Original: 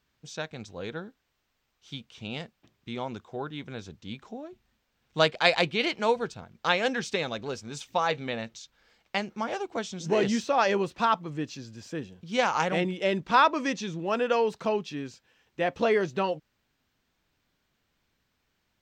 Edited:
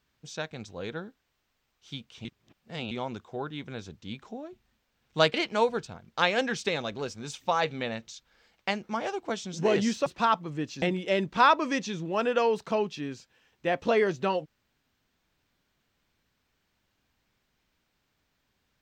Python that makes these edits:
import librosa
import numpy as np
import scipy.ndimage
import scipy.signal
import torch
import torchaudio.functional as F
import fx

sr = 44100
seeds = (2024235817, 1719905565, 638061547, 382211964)

y = fx.edit(x, sr, fx.reverse_span(start_s=2.25, length_s=0.66),
    fx.cut(start_s=5.34, length_s=0.47),
    fx.cut(start_s=10.53, length_s=0.33),
    fx.cut(start_s=11.62, length_s=1.14), tone=tone)